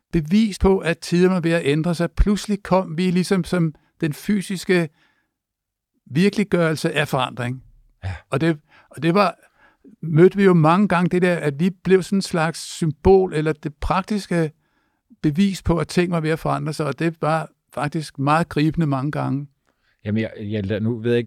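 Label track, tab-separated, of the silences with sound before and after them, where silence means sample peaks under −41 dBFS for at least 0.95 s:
4.880000	6.070000	silence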